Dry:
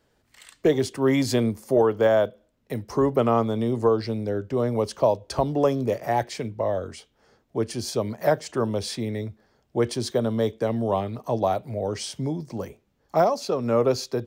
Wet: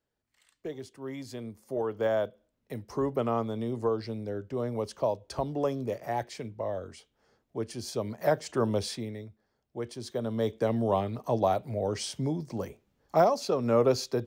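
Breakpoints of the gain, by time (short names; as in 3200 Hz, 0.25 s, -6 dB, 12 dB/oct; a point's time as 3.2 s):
1.37 s -18 dB
2.09 s -8 dB
7.76 s -8 dB
8.77 s -1.5 dB
9.28 s -13 dB
9.94 s -13 dB
10.59 s -2.5 dB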